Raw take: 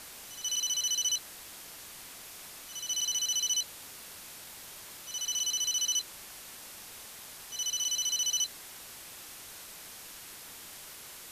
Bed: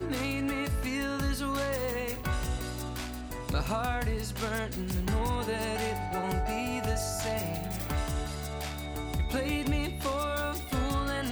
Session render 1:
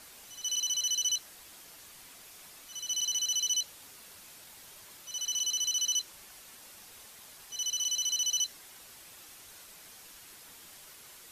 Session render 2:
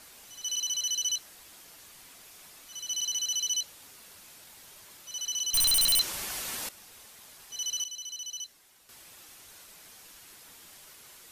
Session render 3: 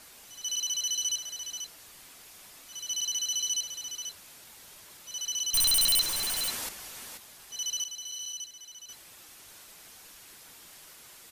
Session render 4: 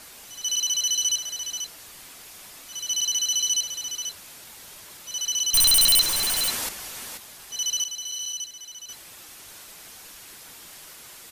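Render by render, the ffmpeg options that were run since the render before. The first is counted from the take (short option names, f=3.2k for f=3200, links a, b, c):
-af "afftdn=nr=6:nf=-48"
-filter_complex "[0:a]asettb=1/sr,asplit=3[a][b][c];[a]atrim=end=5.544[d];[b]atrim=start=5.54:end=6.69,asetpts=PTS-STARTPTS,afade=t=in:d=0.004:c=qsin,afade=t=out:st=1.146:d=0.004:c=qsin,aeval=exprs='0.0944*sin(PI/2*3.98*val(0)/0.0944)':c=same[e];[c]atrim=start=6.686[f];[d][e]acrossfade=d=0.004:c1=hsin:c2=qsin[g];[g][f]acrossfade=d=0.004:c1=qsin:c2=hsin,asplit=3[h][i][j];[h]atrim=end=7.842[k];[i]atrim=start=7.838:end=8.892,asetpts=PTS-STARTPTS,volume=-9dB[l];[j]atrim=start=8.888[m];[k][l]acrossfade=d=0.004:c1=hsin:c2=hsin[n];[n][m]acrossfade=d=0.004:c1=hsin:c2=hsin"
-af "aecho=1:1:486:0.376"
-af "volume=6.5dB"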